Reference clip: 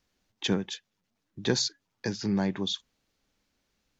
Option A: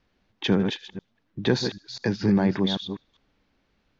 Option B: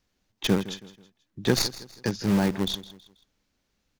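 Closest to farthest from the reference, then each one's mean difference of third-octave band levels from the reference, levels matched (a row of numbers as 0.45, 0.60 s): A, B; 5.0, 7.5 dB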